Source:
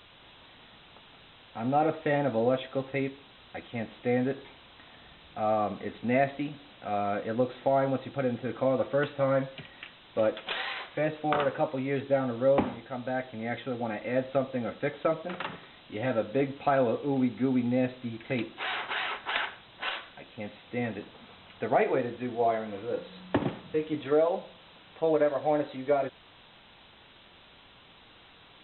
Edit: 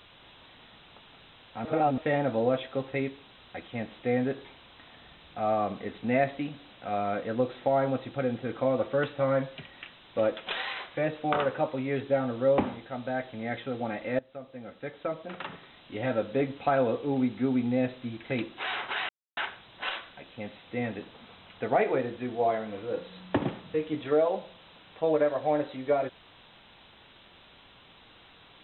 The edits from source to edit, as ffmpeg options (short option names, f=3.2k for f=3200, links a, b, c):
-filter_complex "[0:a]asplit=6[a][b][c][d][e][f];[a]atrim=end=1.652[g];[b]atrim=start=1.648:end=1.982,asetpts=PTS-STARTPTS,areverse[h];[c]atrim=start=1.978:end=14.19,asetpts=PTS-STARTPTS,afade=t=out:st=12.208:d=0.004:c=hsin:silence=0.0891251[i];[d]atrim=start=14.19:end=19.09,asetpts=PTS-STARTPTS,afade=t=in:d=1.8:silence=0.0891251,afade=t=out:st=4.896:d=0.004:c=hsin[j];[e]atrim=start=19.09:end=19.37,asetpts=PTS-STARTPTS,volume=0[k];[f]atrim=start=19.37,asetpts=PTS-STARTPTS,afade=t=in:d=0.004:c=hsin[l];[g][h]acrossfade=d=0.004:c1=hsin:c2=hsin[m];[i][j][k][l]concat=n=4:v=0:a=1[n];[m][n]acrossfade=d=0.004:c1=hsin:c2=hsin"